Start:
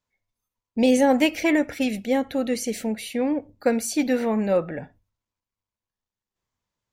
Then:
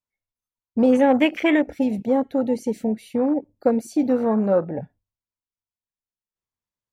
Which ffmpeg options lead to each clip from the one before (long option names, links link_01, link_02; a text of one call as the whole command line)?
ffmpeg -i in.wav -filter_complex "[0:a]afwtdn=0.0355,asplit=2[link_01][link_02];[link_02]acompressor=threshold=-27dB:ratio=6,volume=-1.5dB[link_03];[link_01][link_03]amix=inputs=2:normalize=0" out.wav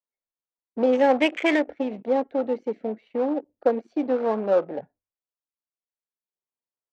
ffmpeg -i in.wav -filter_complex "[0:a]adynamicsmooth=sensitivity=6:basefreq=1100,acrossover=split=300 6100:gain=0.112 1 0.1[link_01][link_02][link_03];[link_01][link_02][link_03]amix=inputs=3:normalize=0" out.wav